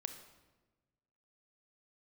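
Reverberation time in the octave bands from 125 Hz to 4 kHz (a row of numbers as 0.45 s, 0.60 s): 1.7 s, 1.5 s, 1.3 s, 1.1 s, 1.0 s, 0.85 s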